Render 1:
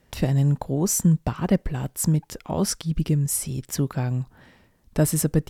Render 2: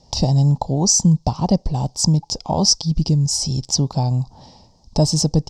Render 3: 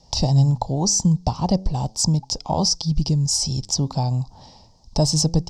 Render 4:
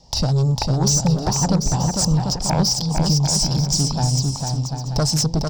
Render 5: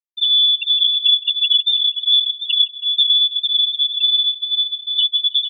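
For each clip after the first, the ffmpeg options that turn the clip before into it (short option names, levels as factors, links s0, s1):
-filter_complex "[0:a]firequalizer=gain_entry='entry(140,0);entry(370,-6);entry(850,6);entry(1500,-24);entry(5000,14);entry(11000,-25)':delay=0.05:min_phase=1,asplit=2[s0][s1];[s1]acompressor=threshold=0.0398:ratio=6,volume=1.12[s2];[s0][s2]amix=inputs=2:normalize=0,volume=1.33"
-filter_complex "[0:a]lowshelf=f=82:g=7,acrossover=split=660|1100[s0][s1][s2];[s0]flanger=delay=5.6:depth=6.2:regen=89:speed=0.37:shape=triangular[s3];[s2]alimiter=limit=0.316:level=0:latency=1:release=101[s4];[s3][s1][s4]amix=inputs=3:normalize=0"
-filter_complex "[0:a]aeval=exprs='0.501*sin(PI/2*2.24*val(0)/0.501)':c=same,asplit=2[s0][s1];[s1]aecho=0:1:450|742.5|932.6|1056|1137:0.631|0.398|0.251|0.158|0.1[s2];[s0][s2]amix=inputs=2:normalize=0,volume=0.376"
-af "lowpass=f=3100:t=q:w=0.5098,lowpass=f=3100:t=q:w=0.6013,lowpass=f=3100:t=q:w=0.9,lowpass=f=3100:t=q:w=2.563,afreqshift=-3600,afftfilt=real='re*gte(hypot(re,im),0.501)':imag='im*gte(hypot(re,im),0.501)':win_size=1024:overlap=0.75,aecho=1:1:162|324|486|648|810:0.106|0.0625|0.0369|0.0218|0.0128,volume=1.5"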